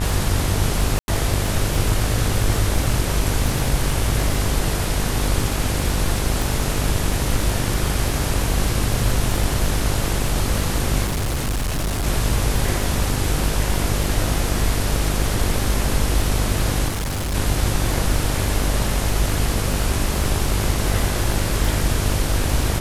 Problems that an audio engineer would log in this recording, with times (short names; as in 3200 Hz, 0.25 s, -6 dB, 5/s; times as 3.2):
buzz 50 Hz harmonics 35 -24 dBFS
crackle 28/s -22 dBFS
0.99–1.08 gap 91 ms
6.42 pop
11.05–12.07 clipped -19 dBFS
16.88–17.35 clipped -21 dBFS